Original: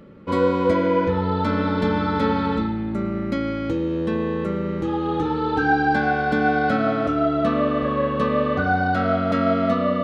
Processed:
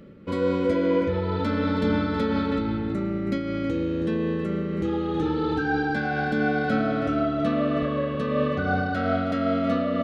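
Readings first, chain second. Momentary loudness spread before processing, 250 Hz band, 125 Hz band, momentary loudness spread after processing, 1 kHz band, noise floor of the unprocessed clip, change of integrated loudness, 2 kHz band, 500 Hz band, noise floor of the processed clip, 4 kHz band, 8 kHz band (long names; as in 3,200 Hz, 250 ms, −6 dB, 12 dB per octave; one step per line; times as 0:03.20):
6 LU, −2.0 dB, −2.5 dB, 4 LU, −7.5 dB, −26 dBFS, −3.5 dB, −4.5 dB, −3.5 dB, −29 dBFS, −2.5 dB, can't be measured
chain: parametric band 950 Hz −8 dB 0.87 octaves
slap from a distant wall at 55 metres, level −8 dB
in parallel at 0 dB: brickwall limiter −19 dBFS, peak gain reduction 10 dB
on the sum: amplitude modulation by smooth noise, depth 50%
level −4.5 dB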